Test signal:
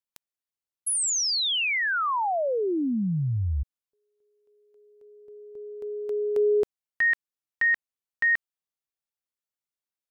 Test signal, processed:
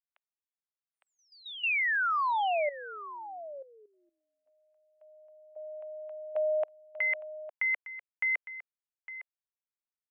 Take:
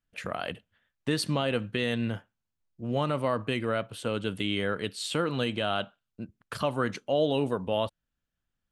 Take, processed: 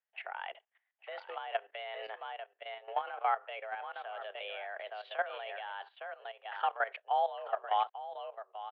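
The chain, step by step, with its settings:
single-sideband voice off tune +200 Hz 380–2,700 Hz
single-tap delay 858 ms −10 dB
output level in coarse steps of 14 dB

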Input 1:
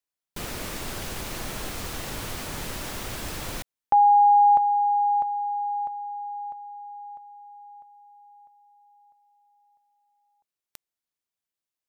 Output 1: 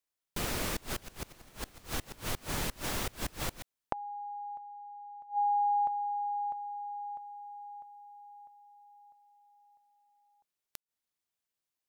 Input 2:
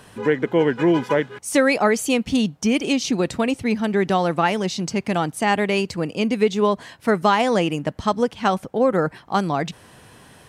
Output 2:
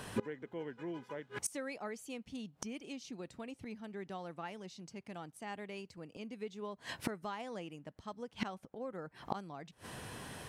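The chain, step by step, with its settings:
gate with flip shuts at −22 dBFS, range −25 dB

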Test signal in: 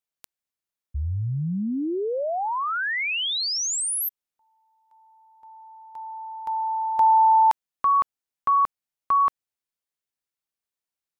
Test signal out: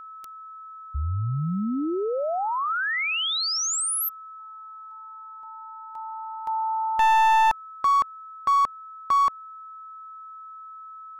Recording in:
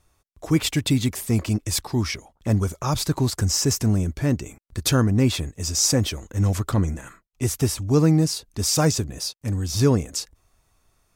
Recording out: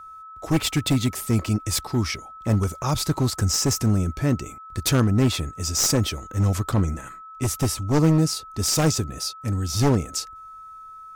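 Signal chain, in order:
wavefolder on the positive side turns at −16.5 dBFS
steady tone 1,300 Hz −39 dBFS

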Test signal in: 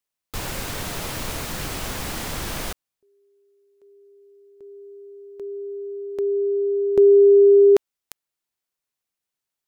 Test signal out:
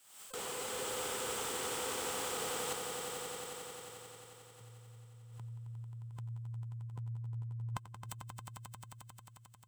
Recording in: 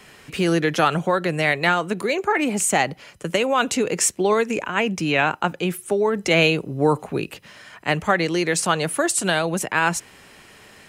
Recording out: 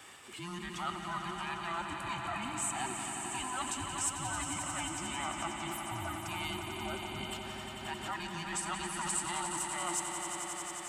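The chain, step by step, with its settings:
frequency inversion band by band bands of 500 Hz
high-pass filter 160 Hz 6 dB per octave
reversed playback
downward compressor 6 to 1, threshold −33 dBFS
reversed playback
thirty-one-band graphic EQ 315 Hz −3 dB, 800 Hz +5 dB, 1,250 Hz +7 dB, 3,150 Hz +6 dB, 8,000 Hz +12 dB
echo that builds up and dies away 89 ms, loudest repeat 5, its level −9 dB
background raised ahead of every attack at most 71 dB per second
level −8 dB

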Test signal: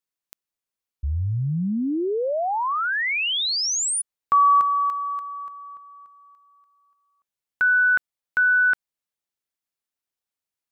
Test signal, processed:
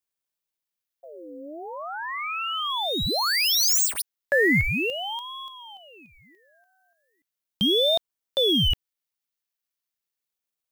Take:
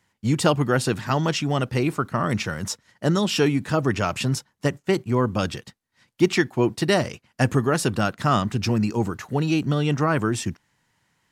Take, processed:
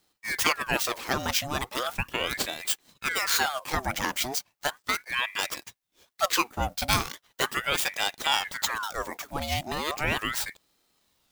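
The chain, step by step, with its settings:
running median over 5 samples
RIAA equalisation recording
ring modulator whose carrier an LFO sweeps 1,300 Hz, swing 70%, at 0.37 Hz
level −1 dB

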